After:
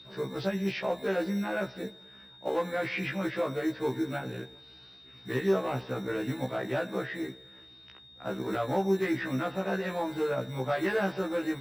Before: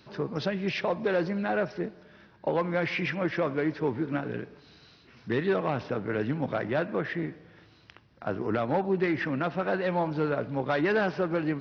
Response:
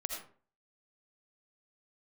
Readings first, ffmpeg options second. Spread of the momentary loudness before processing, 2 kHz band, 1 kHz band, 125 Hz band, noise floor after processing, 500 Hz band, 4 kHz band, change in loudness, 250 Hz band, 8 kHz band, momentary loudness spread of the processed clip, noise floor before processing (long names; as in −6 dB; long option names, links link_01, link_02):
8 LU, −2.5 dB, −3.0 dB, −3.0 dB, −53 dBFS, −2.0 dB, +0.5 dB, −2.0 dB, −2.0 dB, can't be measured, 20 LU, −58 dBFS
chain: -filter_complex "[0:a]highshelf=frequency=3900:gain=-4,aeval=exprs='val(0)+0.00794*sin(2*PI*3700*n/s)':channel_layout=same,acrossover=split=270[link_01][link_02];[link_01]acrusher=samples=23:mix=1:aa=0.000001[link_03];[link_03][link_02]amix=inputs=2:normalize=0,afftfilt=real='re*1.73*eq(mod(b,3),0)':imag='im*1.73*eq(mod(b,3),0)':win_size=2048:overlap=0.75"